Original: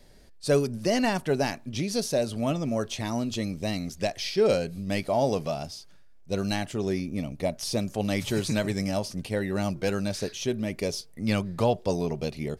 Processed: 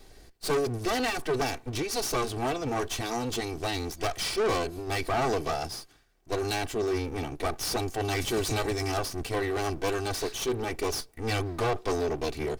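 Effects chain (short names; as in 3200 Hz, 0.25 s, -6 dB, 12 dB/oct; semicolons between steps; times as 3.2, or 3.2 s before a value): minimum comb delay 2.6 ms; soft clip -27.5 dBFS, distortion -9 dB; gain +4.5 dB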